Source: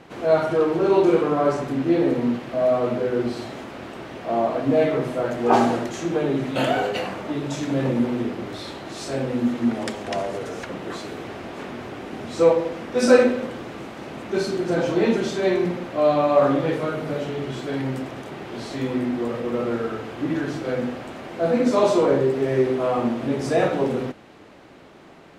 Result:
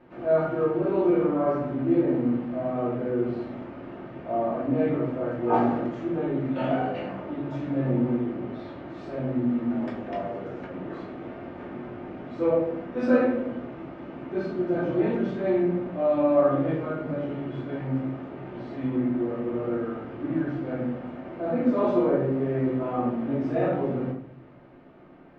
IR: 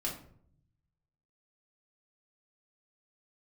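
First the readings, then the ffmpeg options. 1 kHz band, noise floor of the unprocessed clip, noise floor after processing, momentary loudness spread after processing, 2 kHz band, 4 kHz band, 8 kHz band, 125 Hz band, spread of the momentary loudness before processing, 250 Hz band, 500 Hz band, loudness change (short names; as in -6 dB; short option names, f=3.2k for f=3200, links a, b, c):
-6.0 dB, -46 dBFS, -43 dBFS, 15 LU, -9.0 dB, under -15 dB, under -30 dB, -1.5 dB, 16 LU, -2.0 dB, -5.5 dB, -4.5 dB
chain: -filter_complex "[0:a]lowpass=1.9k[a];[1:a]atrim=start_sample=2205[b];[a][b]afir=irnorm=-1:irlink=0,volume=-8.5dB"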